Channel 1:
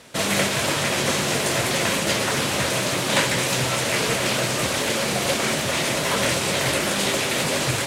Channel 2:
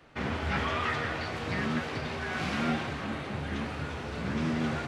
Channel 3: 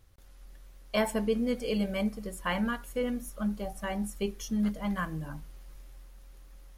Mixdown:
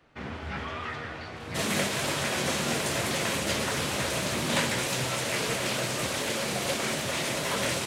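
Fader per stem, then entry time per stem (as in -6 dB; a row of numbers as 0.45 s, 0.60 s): -7.0 dB, -5.0 dB, mute; 1.40 s, 0.00 s, mute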